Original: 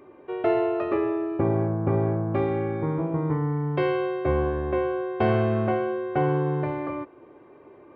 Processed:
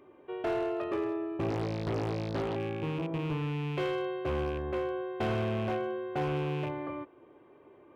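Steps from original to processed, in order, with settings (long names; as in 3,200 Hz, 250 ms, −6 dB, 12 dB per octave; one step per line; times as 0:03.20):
loose part that buzzes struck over −28 dBFS, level −30 dBFS
parametric band 3,200 Hz +6.5 dB 0.42 octaves
gain into a clipping stage and back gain 19.5 dB
0:01.50–0:02.56: highs frequency-modulated by the lows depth 0.84 ms
level −7 dB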